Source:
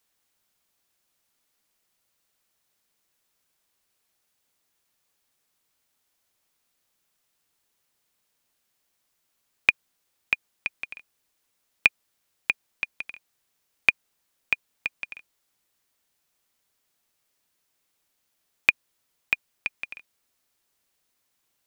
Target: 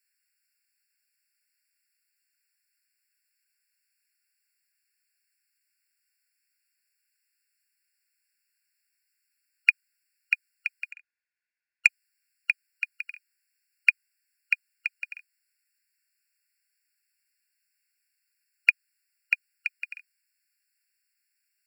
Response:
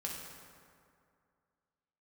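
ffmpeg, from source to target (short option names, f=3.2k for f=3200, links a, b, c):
-filter_complex "[0:a]asettb=1/sr,asplit=3[a][b][c];[a]atrim=end=10.914[d];[b]atrim=start=10.91:end=11.87,asetpts=PTS-STARTPTS,afade=t=in:d=0.004:c=qsin,afade=t=out:st=0.956:d=0.004:c=qsin,adynamicsmooth=sensitivity=1.5:basefreq=2.1k[e];[c]atrim=start=11.866[f];[d][e]acrossfade=d=0.004:c1=hsin:c2=qsin[g];[g][f]acrossfade=d=0.004:c1=qsin:c2=hsin,afftfilt=real='re*eq(mod(floor(b*sr/1024/1400),2),1)':imag='im*eq(mod(floor(b*sr/1024/1400),2),1)':win_size=1024:overlap=0.75"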